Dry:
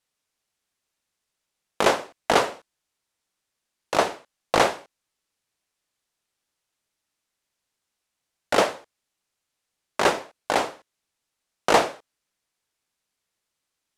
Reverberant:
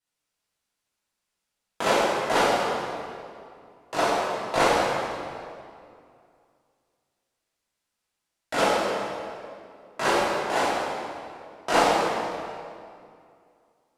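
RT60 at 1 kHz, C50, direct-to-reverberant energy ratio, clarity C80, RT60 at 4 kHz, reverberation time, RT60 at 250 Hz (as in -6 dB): 2.3 s, -2.5 dB, -10.5 dB, -0.5 dB, 1.7 s, 2.4 s, 2.6 s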